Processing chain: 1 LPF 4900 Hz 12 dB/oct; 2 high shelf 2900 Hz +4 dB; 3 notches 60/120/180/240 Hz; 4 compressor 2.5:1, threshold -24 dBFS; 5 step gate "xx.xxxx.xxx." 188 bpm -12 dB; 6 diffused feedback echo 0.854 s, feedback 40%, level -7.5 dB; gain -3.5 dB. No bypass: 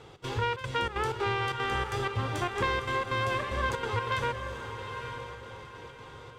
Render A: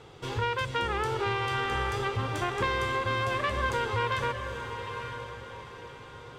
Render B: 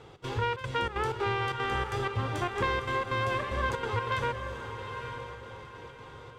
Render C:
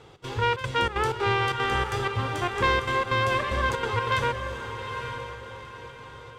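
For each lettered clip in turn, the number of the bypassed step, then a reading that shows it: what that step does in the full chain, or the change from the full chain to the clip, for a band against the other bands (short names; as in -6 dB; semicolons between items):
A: 5, loudness change +1.0 LU; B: 2, 8 kHz band -3.0 dB; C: 4, momentary loudness spread change +1 LU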